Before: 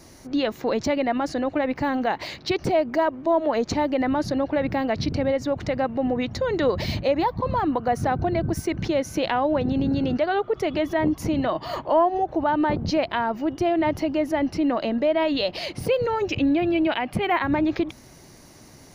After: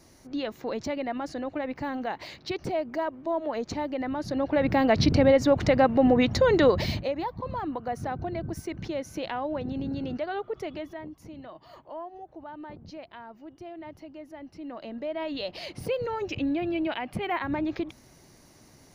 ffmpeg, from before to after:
ffmpeg -i in.wav -af "volume=17dB,afade=type=in:start_time=4.22:duration=0.79:silence=0.251189,afade=type=out:start_time=6.48:duration=0.64:silence=0.223872,afade=type=out:start_time=10.57:duration=0.5:silence=0.281838,afade=type=in:start_time=14.51:duration=1.26:silence=0.223872" out.wav

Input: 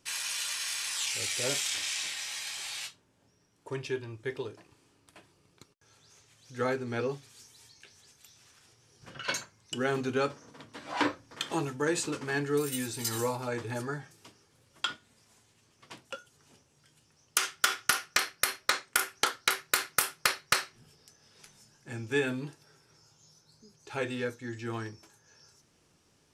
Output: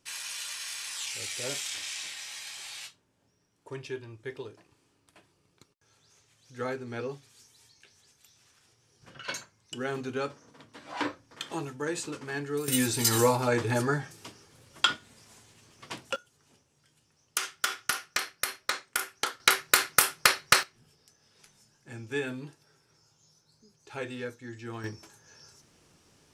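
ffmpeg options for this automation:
ffmpeg -i in.wav -af "asetnsamples=nb_out_samples=441:pad=0,asendcmd='12.68 volume volume 8dB;16.16 volume volume -3dB;19.4 volume volume 5.5dB;20.63 volume volume -3.5dB;24.84 volume volume 5dB',volume=-3.5dB" out.wav

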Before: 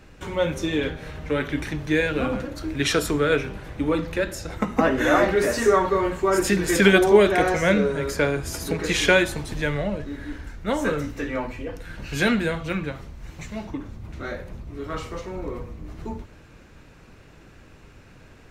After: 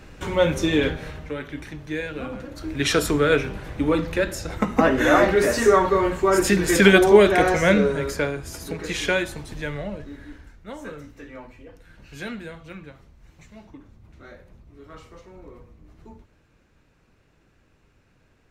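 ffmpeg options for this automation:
ffmpeg -i in.wav -af "volume=13.5dB,afade=type=out:start_time=0.92:duration=0.43:silence=0.266073,afade=type=in:start_time=2.35:duration=0.67:silence=0.334965,afade=type=out:start_time=7.87:duration=0.49:silence=0.446684,afade=type=out:start_time=10.06:duration=0.58:silence=0.421697" out.wav

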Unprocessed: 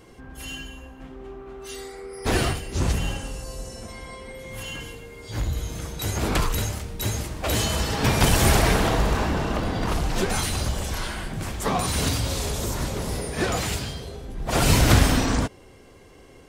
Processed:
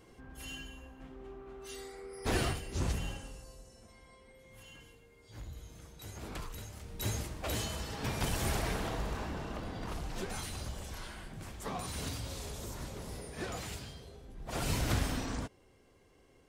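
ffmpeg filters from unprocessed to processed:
ffmpeg -i in.wav -af "volume=2.5dB,afade=type=out:start_time=2.71:duration=0.93:silence=0.298538,afade=type=in:start_time=6.71:duration=0.39:silence=0.266073,afade=type=out:start_time=7.1:duration=0.69:silence=0.446684" out.wav

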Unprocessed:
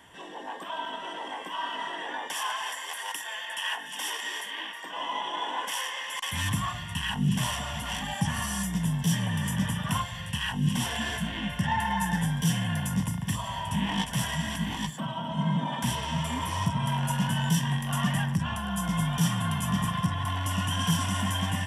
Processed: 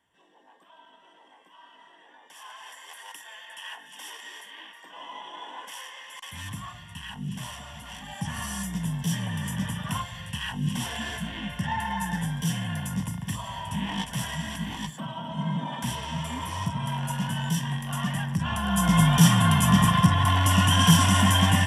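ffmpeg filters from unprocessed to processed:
ffmpeg -i in.wav -af "volume=8.5dB,afade=type=in:start_time=2.21:duration=0.69:silence=0.281838,afade=type=in:start_time=8.02:duration=0.44:silence=0.473151,afade=type=in:start_time=18.29:duration=0.68:silence=0.298538" out.wav

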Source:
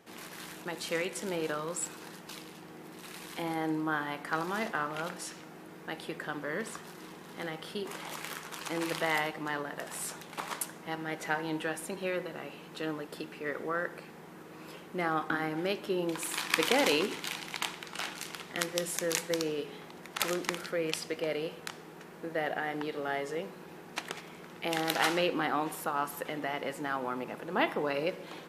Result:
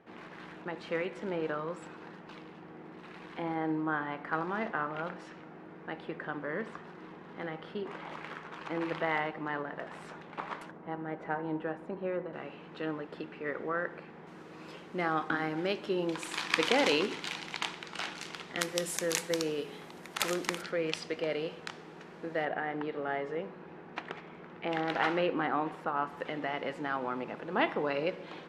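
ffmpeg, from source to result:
ffmpeg -i in.wav -af "asetnsamples=nb_out_samples=441:pad=0,asendcmd='10.71 lowpass f 1200;12.33 lowpass f 2600;14.27 lowpass f 5900;18.61 lowpass f 12000;20.62 lowpass f 5200;22.45 lowpass f 2200;26.2 lowpass f 3900',lowpass=2100" out.wav

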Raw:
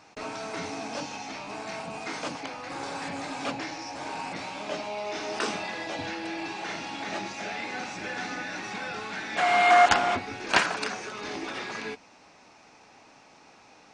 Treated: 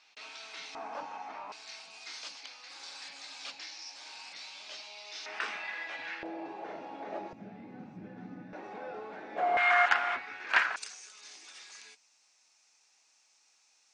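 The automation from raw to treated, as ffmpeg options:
ffmpeg -i in.wav -af "asetnsamples=nb_out_samples=441:pad=0,asendcmd='0.75 bandpass f 1000;1.52 bandpass f 4500;5.26 bandpass f 1900;6.23 bandpass f 530;7.33 bandpass f 170;8.53 bandpass f 510;9.57 bandpass f 1700;10.76 bandpass f 7700',bandpass=frequency=3500:width_type=q:width=1.7:csg=0" out.wav

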